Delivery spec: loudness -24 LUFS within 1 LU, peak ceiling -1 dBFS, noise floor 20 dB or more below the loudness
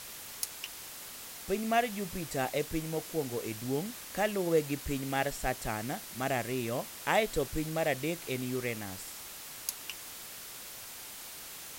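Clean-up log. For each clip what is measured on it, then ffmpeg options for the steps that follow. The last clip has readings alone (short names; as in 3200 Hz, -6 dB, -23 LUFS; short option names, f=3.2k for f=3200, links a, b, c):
noise floor -46 dBFS; noise floor target -55 dBFS; loudness -34.5 LUFS; peak -13.0 dBFS; loudness target -24.0 LUFS
-> -af "afftdn=nr=9:nf=-46"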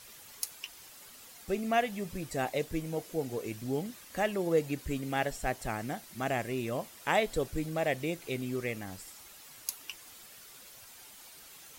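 noise floor -53 dBFS; noise floor target -54 dBFS
-> -af "afftdn=nr=6:nf=-53"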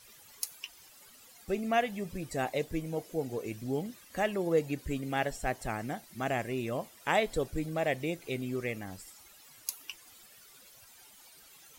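noise floor -57 dBFS; loudness -34.0 LUFS; peak -13.5 dBFS; loudness target -24.0 LUFS
-> -af "volume=10dB"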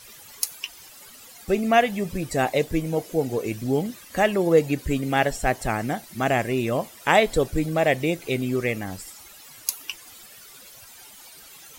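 loudness -24.0 LUFS; peak -3.5 dBFS; noise floor -47 dBFS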